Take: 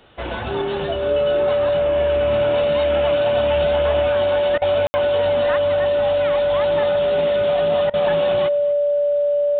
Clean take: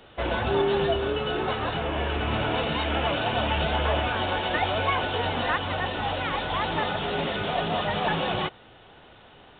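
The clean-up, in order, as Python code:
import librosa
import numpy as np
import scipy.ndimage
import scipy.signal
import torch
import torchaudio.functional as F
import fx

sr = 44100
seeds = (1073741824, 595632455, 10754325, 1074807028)

y = fx.notch(x, sr, hz=580.0, q=30.0)
y = fx.fix_ambience(y, sr, seeds[0], print_start_s=0.0, print_end_s=0.5, start_s=4.87, end_s=4.94)
y = fx.fix_interpolate(y, sr, at_s=(4.58, 7.9), length_ms=36.0)
y = fx.fix_echo_inverse(y, sr, delay_ms=245, level_db=-20.5)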